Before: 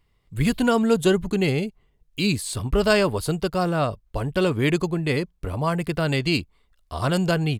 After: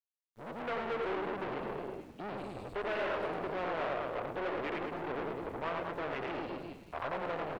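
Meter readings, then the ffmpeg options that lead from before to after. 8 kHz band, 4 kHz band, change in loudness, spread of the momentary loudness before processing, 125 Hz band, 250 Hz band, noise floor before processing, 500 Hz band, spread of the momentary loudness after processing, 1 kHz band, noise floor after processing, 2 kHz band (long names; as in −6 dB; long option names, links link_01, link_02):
below −30 dB, −19.5 dB, −14.5 dB, 8 LU, −24.5 dB, −19.0 dB, −66 dBFS, −12.5 dB, 7 LU, −7.5 dB, −60 dBFS, −12.0 dB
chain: -filter_complex "[0:a]asplit=2[link_01][link_02];[link_02]aecho=0:1:90|207|359.1|556.8|813.9:0.631|0.398|0.251|0.158|0.1[link_03];[link_01][link_03]amix=inputs=2:normalize=0,afwtdn=0.0631,agate=range=-33dB:threshold=-30dB:ratio=3:detection=peak,aeval=exprs='(tanh(44.7*val(0)+0.5)-tanh(0.5))/44.7':channel_layout=same,dynaudnorm=framelen=200:gausssize=5:maxgain=7dB,acrossover=split=370 3700:gain=0.112 1 0.178[link_04][link_05][link_06];[link_04][link_05][link_06]amix=inputs=3:normalize=0,asplit=2[link_07][link_08];[link_08]asplit=6[link_09][link_10][link_11][link_12][link_13][link_14];[link_09]adelay=106,afreqshift=-74,volume=-10dB[link_15];[link_10]adelay=212,afreqshift=-148,volume=-15dB[link_16];[link_11]adelay=318,afreqshift=-222,volume=-20.1dB[link_17];[link_12]adelay=424,afreqshift=-296,volume=-25.1dB[link_18];[link_13]adelay=530,afreqshift=-370,volume=-30.1dB[link_19];[link_14]adelay=636,afreqshift=-444,volume=-35.2dB[link_20];[link_15][link_16][link_17][link_18][link_19][link_20]amix=inputs=6:normalize=0[link_21];[link_07][link_21]amix=inputs=2:normalize=0,aeval=exprs='val(0)*gte(abs(val(0)),0.00188)':channel_layout=same,acrossover=split=3800[link_22][link_23];[link_23]acompressor=threshold=-58dB:ratio=4:attack=1:release=60[link_24];[link_22][link_24]amix=inputs=2:normalize=0,volume=-5dB"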